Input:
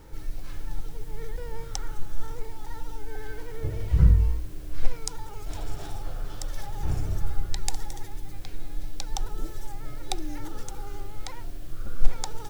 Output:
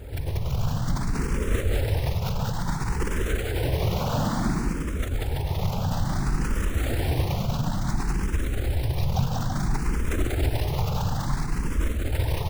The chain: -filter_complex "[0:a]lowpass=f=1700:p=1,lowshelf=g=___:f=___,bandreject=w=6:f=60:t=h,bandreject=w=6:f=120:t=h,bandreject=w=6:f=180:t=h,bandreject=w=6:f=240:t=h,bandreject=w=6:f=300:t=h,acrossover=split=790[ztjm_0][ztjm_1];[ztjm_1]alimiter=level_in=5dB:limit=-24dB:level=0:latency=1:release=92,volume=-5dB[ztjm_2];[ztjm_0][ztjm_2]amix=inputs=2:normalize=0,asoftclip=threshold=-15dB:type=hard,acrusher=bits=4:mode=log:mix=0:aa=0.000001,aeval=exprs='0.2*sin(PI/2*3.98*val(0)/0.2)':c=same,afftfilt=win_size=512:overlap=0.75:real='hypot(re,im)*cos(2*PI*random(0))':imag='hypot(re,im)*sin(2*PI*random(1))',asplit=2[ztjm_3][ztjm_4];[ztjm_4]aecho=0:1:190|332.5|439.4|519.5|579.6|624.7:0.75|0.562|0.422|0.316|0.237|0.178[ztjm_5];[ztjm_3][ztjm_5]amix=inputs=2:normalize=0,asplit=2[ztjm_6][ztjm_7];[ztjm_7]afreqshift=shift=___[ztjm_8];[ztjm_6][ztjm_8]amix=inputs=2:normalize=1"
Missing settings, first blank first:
4.5, 280, 0.58